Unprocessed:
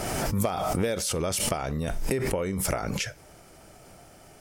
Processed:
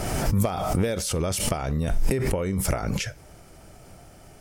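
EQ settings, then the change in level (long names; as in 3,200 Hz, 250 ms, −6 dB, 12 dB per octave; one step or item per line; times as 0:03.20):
low-shelf EQ 160 Hz +8.5 dB
0.0 dB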